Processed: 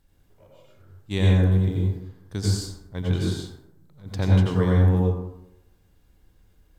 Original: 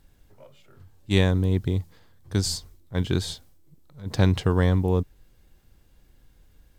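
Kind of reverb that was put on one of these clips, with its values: plate-style reverb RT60 0.83 s, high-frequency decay 0.45×, pre-delay 75 ms, DRR -3 dB; gain -6.5 dB

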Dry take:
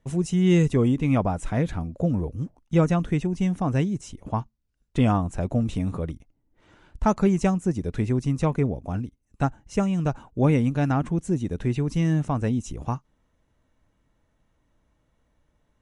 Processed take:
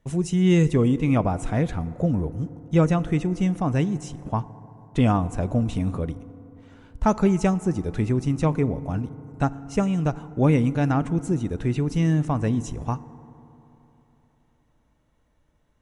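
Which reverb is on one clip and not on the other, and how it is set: FDN reverb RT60 3.4 s, high-frequency decay 0.35×, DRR 16 dB; gain +1 dB

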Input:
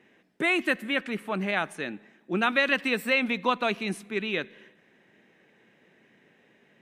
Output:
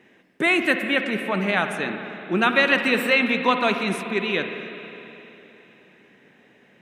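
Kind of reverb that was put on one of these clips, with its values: spring tank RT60 3.3 s, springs 51/59 ms, chirp 30 ms, DRR 6 dB; gain +5 dB

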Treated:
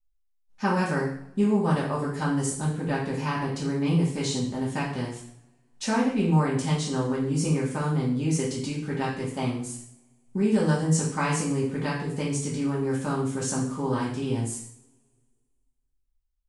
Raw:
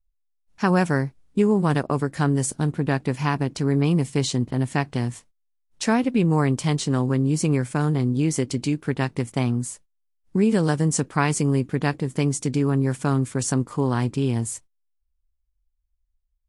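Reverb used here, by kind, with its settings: two-slope reverb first 0.56 s, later 1.9 s, from -26 dB, DRR -7 dB; gain -10.5 dB

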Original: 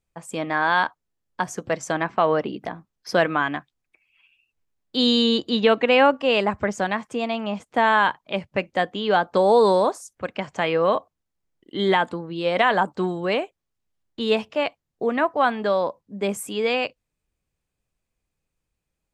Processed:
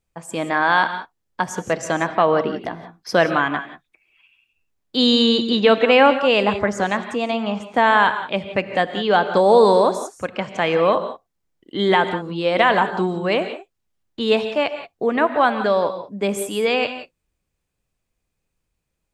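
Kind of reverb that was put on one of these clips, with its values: non-linear reverb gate 0.2 s rising, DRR 9.5 dB; gain +3 dB

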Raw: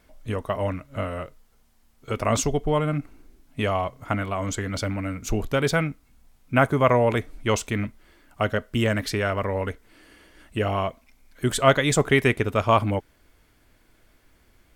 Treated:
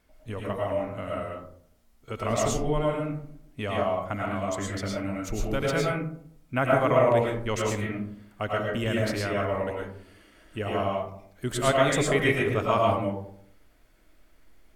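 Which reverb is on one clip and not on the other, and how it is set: digital reverb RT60 0.63 s, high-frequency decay 0.35×, pre-delay 70 ms, DRR -3 dB; gain -7.5 dB

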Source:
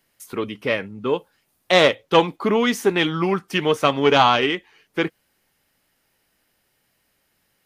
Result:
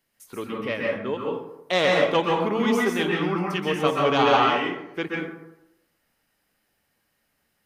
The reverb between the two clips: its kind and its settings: plate-style reverb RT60 0.85 s, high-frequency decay 0.45×, pre-delay 0.115 s, DRR -2.5 dB; gain -7.5 dB

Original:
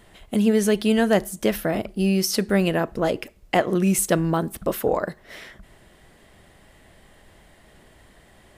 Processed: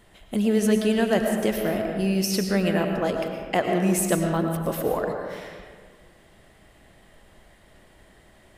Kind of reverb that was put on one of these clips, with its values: digital reverb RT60 1.7 s, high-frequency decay 0.55×, pre-delay 70 ms, DRR 3 dB; gain -3.5 dB

